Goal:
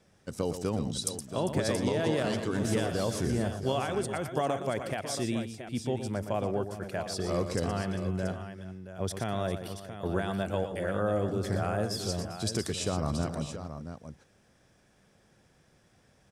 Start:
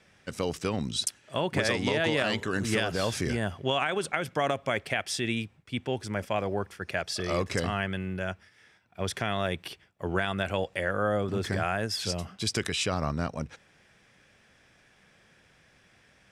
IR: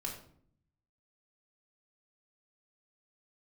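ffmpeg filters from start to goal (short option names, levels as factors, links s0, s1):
-af "equalizer=f=2300:t=o:w=1.8:g=-12,aecho=1:1:118|399|678:0.335|0.178|0.316"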